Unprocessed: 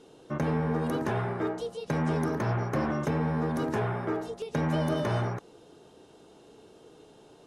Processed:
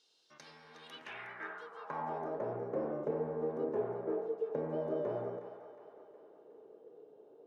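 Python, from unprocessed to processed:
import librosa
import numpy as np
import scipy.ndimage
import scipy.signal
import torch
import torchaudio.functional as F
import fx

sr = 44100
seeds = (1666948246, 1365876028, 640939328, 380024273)

y = fx.vibrato(x, sr, rate_hz=6.9, depth_cents=9.6)
y = fx.echo_split(y, sr, split_hz=640.0, low_ms=99, high_ms=363, feedback_pct=52, wet_db=-9)
y = fx.filter_sweep_bandpass(y, sr, from_hz=4600.0, to_hz=470.0, start_s=0.63, end_s=2.56, q=3.1)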